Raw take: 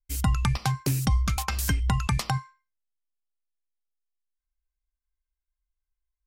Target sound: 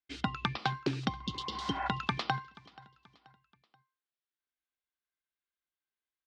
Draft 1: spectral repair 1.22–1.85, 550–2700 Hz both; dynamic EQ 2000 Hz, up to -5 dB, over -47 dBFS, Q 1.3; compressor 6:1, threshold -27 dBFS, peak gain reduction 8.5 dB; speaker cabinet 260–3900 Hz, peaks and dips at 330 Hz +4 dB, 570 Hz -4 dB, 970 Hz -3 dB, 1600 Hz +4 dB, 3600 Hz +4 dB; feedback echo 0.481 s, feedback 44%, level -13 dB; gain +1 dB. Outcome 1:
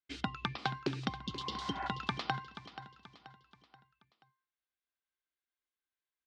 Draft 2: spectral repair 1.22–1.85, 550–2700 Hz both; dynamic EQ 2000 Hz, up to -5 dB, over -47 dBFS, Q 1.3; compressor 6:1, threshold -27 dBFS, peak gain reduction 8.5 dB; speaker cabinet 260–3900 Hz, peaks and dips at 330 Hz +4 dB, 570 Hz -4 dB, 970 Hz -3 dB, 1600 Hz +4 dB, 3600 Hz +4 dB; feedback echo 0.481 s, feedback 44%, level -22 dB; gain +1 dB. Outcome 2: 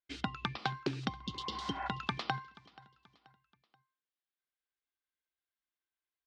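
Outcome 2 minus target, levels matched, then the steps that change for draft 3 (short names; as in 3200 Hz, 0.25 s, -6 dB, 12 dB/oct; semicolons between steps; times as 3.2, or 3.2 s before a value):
compressor: peak gain reduction +5 dB
change: compressor 6:1, threshold -21 dBFS, peak gain reduction 3.5 dB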